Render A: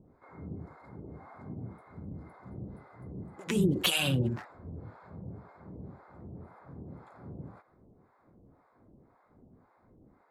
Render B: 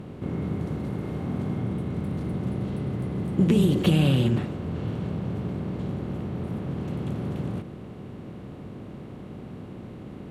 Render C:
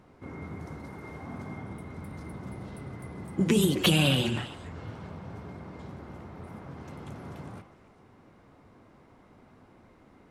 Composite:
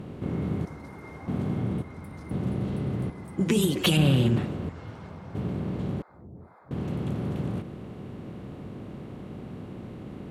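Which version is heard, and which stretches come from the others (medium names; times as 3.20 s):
B
0.65–1.28 s: from C
1.82–2.31 s: from C
3.10–3.97 s: from C
4.69–5.35 s: from C
6.02–6.71 s: from A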